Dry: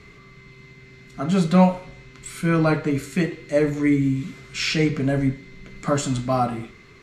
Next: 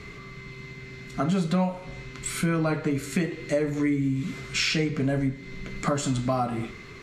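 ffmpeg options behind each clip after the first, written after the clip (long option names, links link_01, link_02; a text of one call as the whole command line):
ffmpeg -i in.wav -af "acompressor=threshold=-28dB:ratio=5,volume=5dB" out.wav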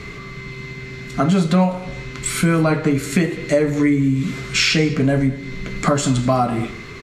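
ffmpeg -i in.wav -af "aecho=1:1:201:0.0944,volume=8.5dB" out.wav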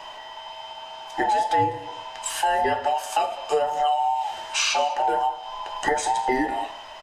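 ffmpeg -i in.wav -af "afftfilt=real='real(if(between(b,1,1008),(2*floor((b-1)/48)+1)*48-b,b),0)':imag='imag(if(between(b,1,1008),(2*floor((b-1)/48)+1)*48-b,b),0)*if(between(b,1,1008),-1,1)':win_size=2048:overlap=0.75,volume=-6dB" out.wav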